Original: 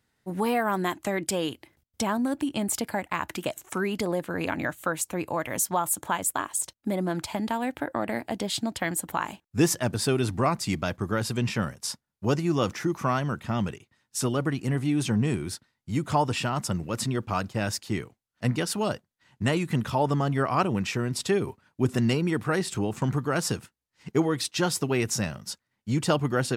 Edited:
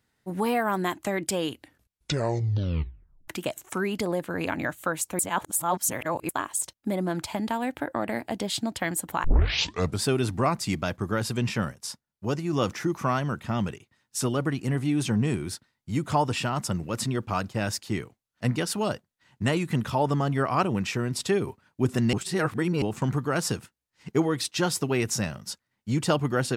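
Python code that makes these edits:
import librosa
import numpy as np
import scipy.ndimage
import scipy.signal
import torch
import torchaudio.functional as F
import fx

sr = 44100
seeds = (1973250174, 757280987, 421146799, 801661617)

y = fx.edit(x, sr, fx.tape_stop(start_s=1.51, length_s=1.77),
    fx.reverse_span(start_s=5.19, length_s=1.1),
    fx.tape_start(start_s=9.24, length_s=0.78),
    fx.clip_gain(start_s=11.72, length_s=0.81, db=-3.5),
    fx.reverse_span(start_s=22.13, length_s=0.69), tone=tone)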